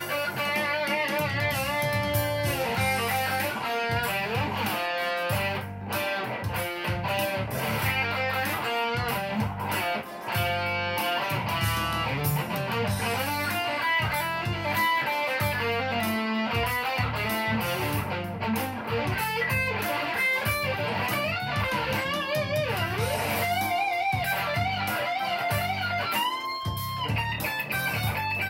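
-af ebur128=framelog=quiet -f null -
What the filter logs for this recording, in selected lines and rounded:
Integrated loudness:
  I:         -27.0 LUFS
  Threshold: -37.0 LUFS
Loudness range:
  LRA:         1.7 LU
  Threshold: -47.0 LUFS
  LRA low:   -27.8 LUFS
  LRA high:  -26.1 LUFS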